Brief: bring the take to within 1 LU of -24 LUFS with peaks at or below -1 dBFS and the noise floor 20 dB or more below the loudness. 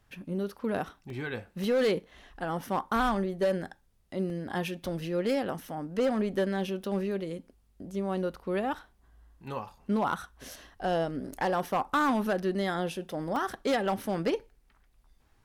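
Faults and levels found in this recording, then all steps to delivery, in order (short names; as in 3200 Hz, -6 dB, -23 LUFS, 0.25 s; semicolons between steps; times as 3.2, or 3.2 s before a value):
clipped 0.8%; flat tops at -21.0 dBFS; dropouts 5; longest dropout 1.3 ms; loudness -31.5 LUFS; peak -21.0 dBFS; loudness target -24.0 LUFS
-> clip repair -21 dBFS; interpolate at 1.1/1.64/4.3/11.33/13.36, 1.3 ms; gain +7.5 dB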